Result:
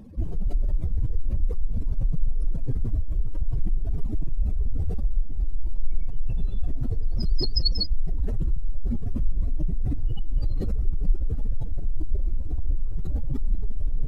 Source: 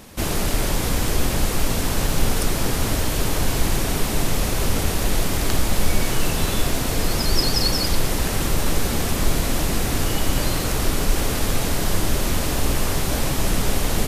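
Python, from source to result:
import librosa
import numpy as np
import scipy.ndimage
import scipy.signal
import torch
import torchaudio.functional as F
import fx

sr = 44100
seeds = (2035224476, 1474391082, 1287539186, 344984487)

y = fx.spec_expand(x, sr, power=2.7)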